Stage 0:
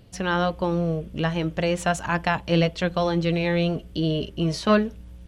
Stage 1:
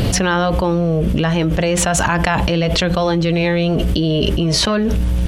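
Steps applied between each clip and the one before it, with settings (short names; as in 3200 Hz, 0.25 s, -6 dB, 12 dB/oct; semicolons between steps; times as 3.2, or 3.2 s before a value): fast leveller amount 100%; gain -1 dB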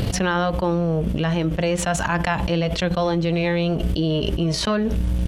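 harmonic-percussive split harmonic +4 dB; transient shaper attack +5 dB, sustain -12 dB; gain -8.5 dB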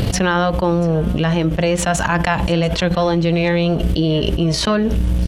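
echo 0.685 s -22 dB; gain +4.5 dB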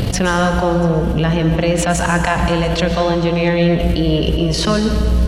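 plate-style reverb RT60 1.8 s, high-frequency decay 0.85×, pre-delay 0.105 s, DRR 5 dB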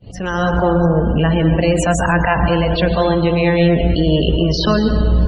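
opening faded in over 0.59 s; loudest bins only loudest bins 64; gain +1 dB; Opus 20 kbps 48000 Hz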